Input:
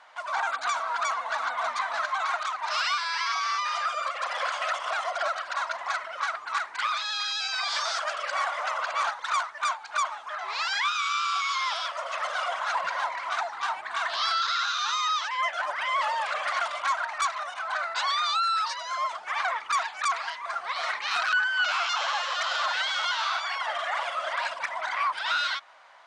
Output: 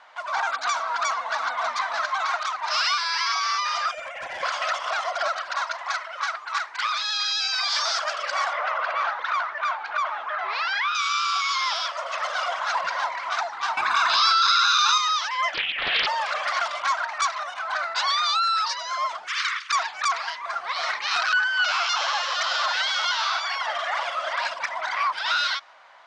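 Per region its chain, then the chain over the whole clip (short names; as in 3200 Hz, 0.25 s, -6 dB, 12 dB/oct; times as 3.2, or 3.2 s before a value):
3.91–4.43 fixed phaser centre 1200 Hz, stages 6 + overloaded stage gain 32 dB
5.64–7.8 HPF 46 Hz + bell 170 Hz -11.5 dB 2.5 oct
8.53–10.95 BPF 290–2400 Hz + bell 910 Hz -4 dB 0.56 oct + fast leveller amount 50%
13.77–14.98 comb 0.8 ms, depth 57% + fast leveller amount 70%
15.54–16.07 inverted band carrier 3800 Hz + Doppler distortion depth 0.55 ms
19.26–19.71 spectral limiter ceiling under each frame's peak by 17 dB + steep high-pass 1100 Hz 72 dB/oct
whole clip: LPF 6800 Hz 12 dB/oct; dynamic EQ 5300 Hz, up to +7 dB, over -49 dBFS, Q 2; gain +2.5 dB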